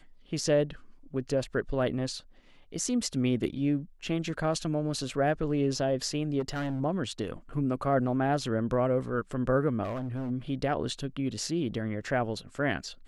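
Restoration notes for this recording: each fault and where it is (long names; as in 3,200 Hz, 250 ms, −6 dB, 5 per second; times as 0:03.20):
0:06.39–0:06.81: clipping −28 dBFS
0:09.83–0:10.31: clipping −30 dBFS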